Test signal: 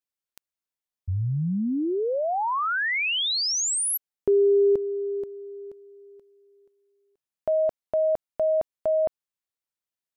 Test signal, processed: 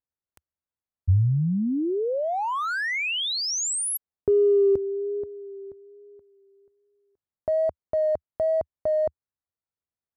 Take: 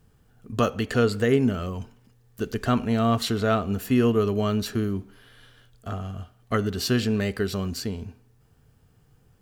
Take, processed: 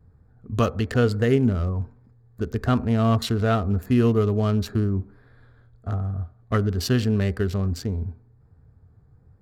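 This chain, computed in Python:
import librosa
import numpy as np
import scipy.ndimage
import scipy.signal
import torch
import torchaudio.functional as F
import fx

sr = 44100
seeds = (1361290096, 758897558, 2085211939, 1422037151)

y = fx.wiener(x, sr, points=15)
y = fx.vibrato(y, sr, rate_hz=1.2, depth_cents=33.0)
y = fx.peak_eq(y, sr, hz=79.0, db=10.5, octaves=1.1)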